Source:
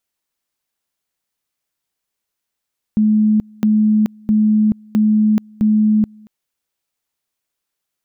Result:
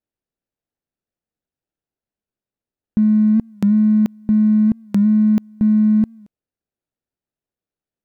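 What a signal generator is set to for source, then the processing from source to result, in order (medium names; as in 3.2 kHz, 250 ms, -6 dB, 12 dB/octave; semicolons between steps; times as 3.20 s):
two-level tone 214 Hz -10 dBFS, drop 29 dB, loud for 0.43 s, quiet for 0.23 s, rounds 5
median filter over 41 samples; warped record 45 rpm, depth 100 cents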